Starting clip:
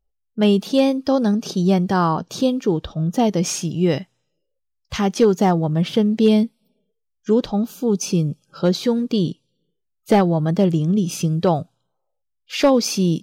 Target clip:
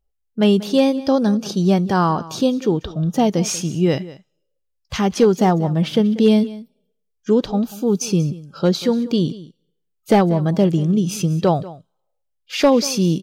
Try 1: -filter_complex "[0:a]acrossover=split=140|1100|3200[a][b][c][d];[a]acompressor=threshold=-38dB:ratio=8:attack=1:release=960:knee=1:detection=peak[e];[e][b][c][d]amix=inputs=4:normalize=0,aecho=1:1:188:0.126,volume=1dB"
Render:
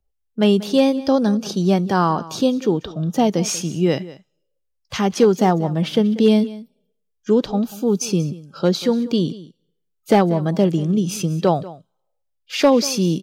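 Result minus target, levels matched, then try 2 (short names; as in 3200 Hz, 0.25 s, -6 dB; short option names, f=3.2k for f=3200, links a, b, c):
compressor: peak gain reduction +13.5 dB
-af "aecho=1:1:188:0.126,volume=1dB"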